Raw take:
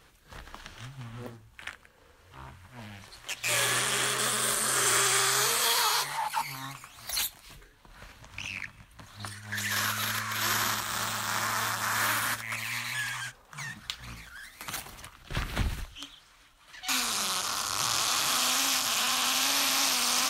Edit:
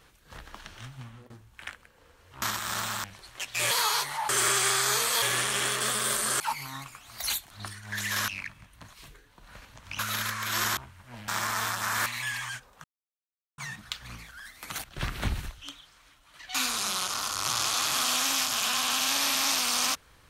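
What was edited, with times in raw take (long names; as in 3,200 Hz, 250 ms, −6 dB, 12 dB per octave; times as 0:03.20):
0:00.99–0:01.30: fade out, to −22 dB
0:02.42–0:02.93: swap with 0:10.66–0:11.28
0:03.60–0:04.78: swap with 0:05.71–0:06.29
0:07.40–0:08.46: swap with 0:09.11–0:09.88
0:12.06–0:12.78: remove
0:13.56: splice in silence 0.74 s
0:14.82–0:15.18: remove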